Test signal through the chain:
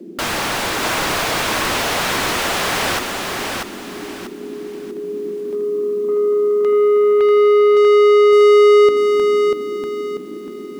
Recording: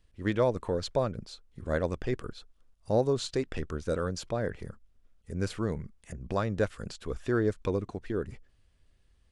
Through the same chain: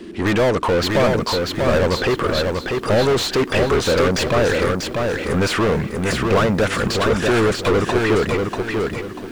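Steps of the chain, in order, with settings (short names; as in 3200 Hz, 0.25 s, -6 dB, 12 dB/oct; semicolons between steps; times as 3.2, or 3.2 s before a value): band noise 180–380 Hz -61 dBFS; overdrive pedal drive 35 dB, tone 2600 Hz, clips at -15 dBFS; lo-fi delay 0.641 s, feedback 35%, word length 9-bit, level -3.5 dB; gain +5 dB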